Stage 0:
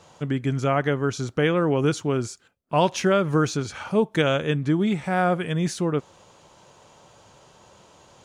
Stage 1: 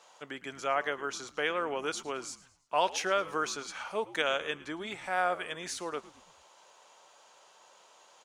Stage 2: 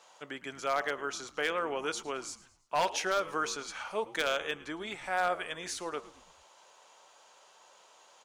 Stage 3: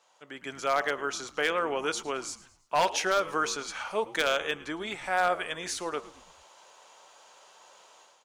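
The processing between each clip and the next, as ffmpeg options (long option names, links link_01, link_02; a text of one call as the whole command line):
ffmpeg -i in.wav -filter_complex "[0:a]highpass=680,asplit=5[link_01][link_02][link_03][link_04][link_05];[link_02]adelay=110,afreqshift=-93,volume=-18.5dB[link_06];[link_03]adelay=220,afreqshift=-186,volume=-25.6dB[link_07];[link_04]adelay=330,afreqshift=-279,volume=-32.8dB[link_08];[link_05]adelay=440,afreqshift=-372,volume=-39.9dB[link_09];[link_01][link_06][link_07][link_08][link_09]amix=inputs=5:normalize=0,volume=-4dB" out.wav
ffmpeg -i in.wav -af "bandreject=frequency=116.5:width_type=h:width=4,bandreject=frequency=233:width_type=h:width=4,bandreject=frequency=349.5:width_type=h:width=4,bandreject=frequency=466:width_type=h:width=4,bandreject=frequency=582.5:width_type=h:width=4,bandreject=frequency=699:width_type=h:width=4,bandreject=frequency=815.5:width_type=h:width=4,bandreject=frequency=932:width_type=h:width=4,bandreject=frequency=1048.5:width_type=h:width=4,bandreject=frequency=1165:width_type=h:width=4,bandreject=frequency=1281.5:width_type=h:width=4,asubboost=boost=2.5:cutoff=71,aeval=exprs='0.1*(abs(mod(val(0)/0.1+3,4)-2)-1)':channel_layout=same" out.wav
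ffmpeg -i in.wav -af "dynaudnorm=framelen=250:gausssize=3:maxgain=11.5dB,volume=-7.5dB" out.wav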